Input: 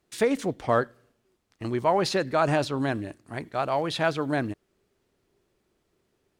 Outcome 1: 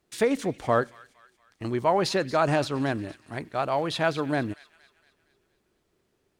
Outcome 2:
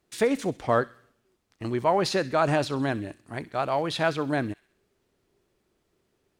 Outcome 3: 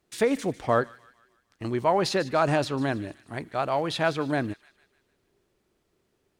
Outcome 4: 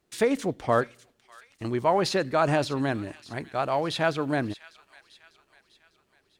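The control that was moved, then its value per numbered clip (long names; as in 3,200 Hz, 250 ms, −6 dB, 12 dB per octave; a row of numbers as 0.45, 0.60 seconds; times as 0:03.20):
delay with a high-pass on its return, delay time: 232, 65, 150, 599 milliseconds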